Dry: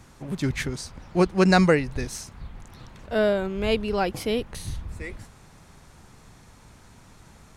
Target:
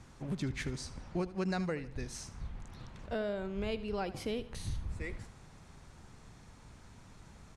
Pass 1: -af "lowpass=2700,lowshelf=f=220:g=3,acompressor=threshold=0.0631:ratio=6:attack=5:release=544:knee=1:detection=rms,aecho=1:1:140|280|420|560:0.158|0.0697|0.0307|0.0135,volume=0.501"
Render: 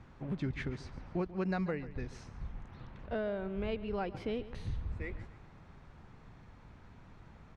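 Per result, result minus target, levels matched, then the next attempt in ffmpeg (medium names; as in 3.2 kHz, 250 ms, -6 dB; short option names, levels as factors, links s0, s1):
echo 63 ms late; 8 kHz band -15.5 dB
-af "lowpass=2700,lowshelf=f=220:g=3,acompressor=threshold=0.0631:ratio=6:attack=5:release=544:knee=1:detection=rms,aecho=1:1:77|154|231|308:0.158|0.0697|0.0307|0.0135,volume=0.501"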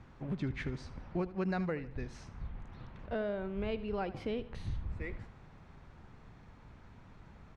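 8 kHz band -15.5 dB
-af "lowpass=9100,lowshelf=f=220:g=3,acompressor=threshold=0.0631:ratio=6:attack=5:release=544:knee=1:detection=rms,aecho=1:1:77|154|231|308:0.158|0.0697|0.0307|0.0135,volume=0.501"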